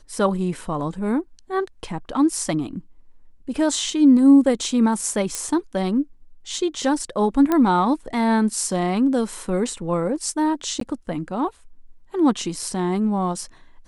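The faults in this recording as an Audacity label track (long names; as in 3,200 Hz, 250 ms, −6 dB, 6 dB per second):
5.350000	5.350000	click −10 dBFS
7.520000	7.520000	click −8 dBFS
10.800000	10.810000	drop-out 13 ms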